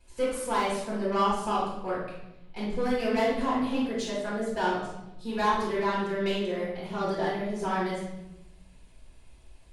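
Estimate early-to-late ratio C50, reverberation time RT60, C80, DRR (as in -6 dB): 0.5 dB, 0.90 s, 5.0 dB, -8.5 dB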